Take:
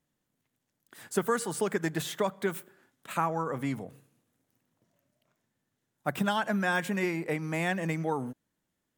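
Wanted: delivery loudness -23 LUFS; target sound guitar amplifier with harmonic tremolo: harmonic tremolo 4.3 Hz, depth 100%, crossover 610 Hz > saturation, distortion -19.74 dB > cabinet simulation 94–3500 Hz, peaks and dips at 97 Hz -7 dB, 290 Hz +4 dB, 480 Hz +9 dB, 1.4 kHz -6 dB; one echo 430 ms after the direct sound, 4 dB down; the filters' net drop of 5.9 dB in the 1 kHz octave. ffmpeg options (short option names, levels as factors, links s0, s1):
-filter_complex "[0:a]equalizer=f=1000:t=o:g=-7,aecho=1:1:430:0.631,acrossover=split=610[s0][s1];[s0]aeval=exprs='val(0)*(1-1/2+1/2*cos(2*PI*4.3*n/s))':c=same[s2];[s1]aeval=exprs='val(0)*(1-1/2-1/2*cos(2*PI*4.3*n/s))':c=same[s3];[s2][s3]amix=inputs=2:normalize=0,asoftclip=threshold=0.0708,highpass=94,equalizer=f=97:t=q:w=4:g=-7,equalizer=f=290:t=q:w=4:g=4,equalizer=f=480:t=q:w=4:g=9,equalizer=f=1400:t=q:w=4:g=-6,lowpass=f=3500:w=0.5412,lowpass=f=3500:w=1.3066,volume=4.22"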